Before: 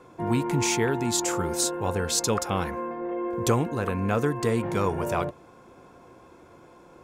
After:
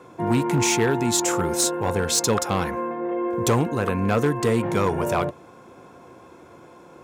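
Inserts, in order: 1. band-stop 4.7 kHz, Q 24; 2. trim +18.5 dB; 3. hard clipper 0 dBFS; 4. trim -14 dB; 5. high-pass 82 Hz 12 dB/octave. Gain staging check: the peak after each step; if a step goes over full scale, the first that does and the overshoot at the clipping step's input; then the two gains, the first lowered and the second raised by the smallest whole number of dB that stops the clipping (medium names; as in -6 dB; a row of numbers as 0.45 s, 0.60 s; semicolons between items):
-10.0 dBFS, +8.5 dBFS, 0.0 dBFS, -14.0 dBFS, -8.5 dBFS; step 2, 8.5 dB; step 2 +9.5 dB, step 4 -5 dB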